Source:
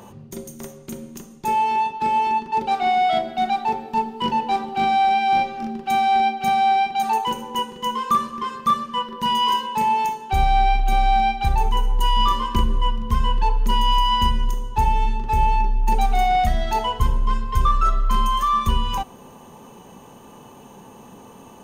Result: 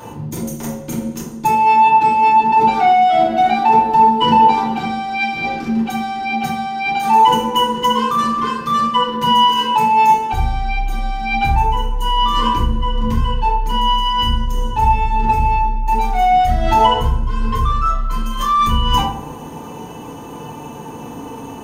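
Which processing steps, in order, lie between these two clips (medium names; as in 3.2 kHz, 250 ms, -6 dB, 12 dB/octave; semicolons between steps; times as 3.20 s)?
in parallel at +3 dB: compressor with a negative ratio -23 dBFS, ratio -0.5; on the sum: FDN reverb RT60 0.58 s, low-frequency decay 1.5×, high-frequency decay 0.55×, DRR -7 dB; trim -8.5 dB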